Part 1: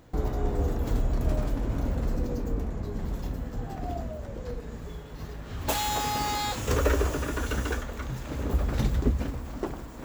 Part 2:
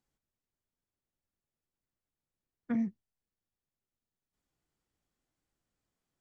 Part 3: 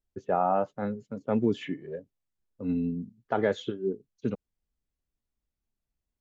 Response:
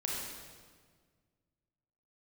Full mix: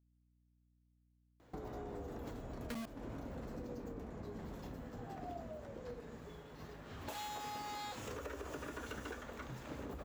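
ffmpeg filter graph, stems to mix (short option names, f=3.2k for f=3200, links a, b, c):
-filter_complex "[0:a]highshelf=f=4.5k:g=-6,alimiter=limit=-21dB:level=0:latency=1:release=169,highpass=f=220:p=1,adelay=1400,volume=-7dB[a];[1:a]acrusher=bits=4:mix=0:aa=0.000001,aeval=exprs='val(0)+0.000447*(sin(2*PI*60*n/s)+sin(2*PI*2*60*n/s)/2+sin(2*PI*3*60*n/s)/3+sin(2*PI*4*60*n/s)/4+sin(2*PI*5*60*n/s)/5)':c=same,volume=-5.5dB[b];[a][b]amix=inputs=2:normalize=0,acompressor=threshold=-41dB:ratio=6,volume=0dB"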